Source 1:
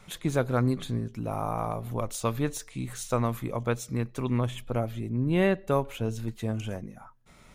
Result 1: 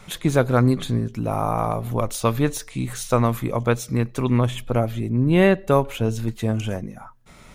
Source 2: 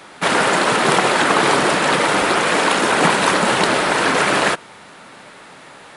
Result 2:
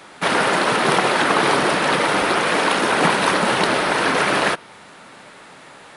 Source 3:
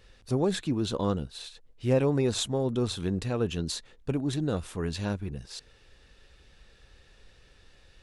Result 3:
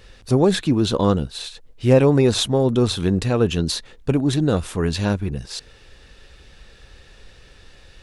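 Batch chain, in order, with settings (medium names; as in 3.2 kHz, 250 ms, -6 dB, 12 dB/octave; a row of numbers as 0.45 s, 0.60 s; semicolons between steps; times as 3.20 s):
dynamic bell 7.4 kHz, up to -7 dB, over -46 dBFS, Q 3.2; peak normalisation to -3 dBFS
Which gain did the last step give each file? +8.0 dB, -2.0 dB, +10.0 dB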